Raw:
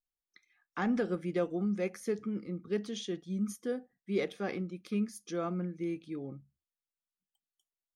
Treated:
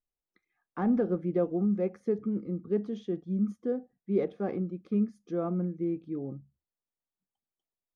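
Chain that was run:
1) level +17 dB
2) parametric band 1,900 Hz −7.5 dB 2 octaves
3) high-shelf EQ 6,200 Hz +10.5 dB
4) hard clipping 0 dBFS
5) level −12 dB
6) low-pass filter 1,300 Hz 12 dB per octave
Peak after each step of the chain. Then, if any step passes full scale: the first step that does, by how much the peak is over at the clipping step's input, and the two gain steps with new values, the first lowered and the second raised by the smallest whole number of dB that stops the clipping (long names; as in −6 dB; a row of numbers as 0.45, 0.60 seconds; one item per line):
−3.0, −4.0, −4.0, −4.0, −16.0, −16.5 dBFS
no step passes full scale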